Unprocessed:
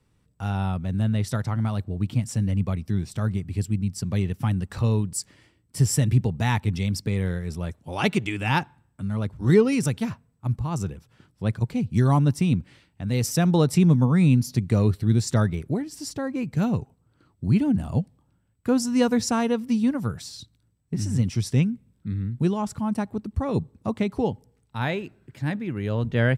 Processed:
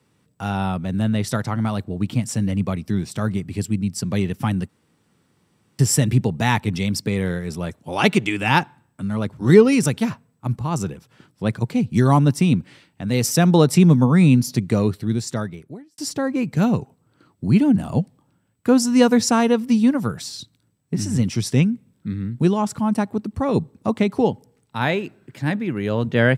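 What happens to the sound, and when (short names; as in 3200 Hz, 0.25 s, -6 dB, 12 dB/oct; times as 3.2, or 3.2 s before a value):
4.69–5.79 room tone
14.5–15.98 fade out
whole clip: HPF 150 Hz 12 dB/oct; gain +6.5 dB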